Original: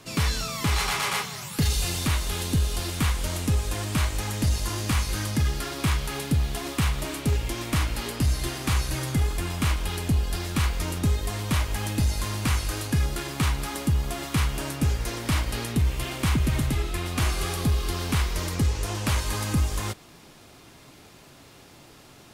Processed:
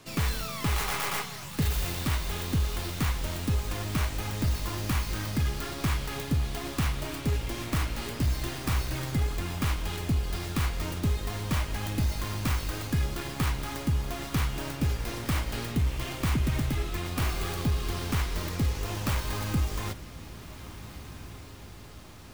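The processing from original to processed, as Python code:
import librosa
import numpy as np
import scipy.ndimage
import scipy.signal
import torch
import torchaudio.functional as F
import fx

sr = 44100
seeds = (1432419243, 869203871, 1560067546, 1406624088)

y = fx.tracing_dist(x, sr, depth_ms=0.24)
y = fx.echo_diffused(y, sr, ms=1599, feedback_pct=53, wet_db=-14.5)
y = y * librosa.db_to_amplitude(-3.5)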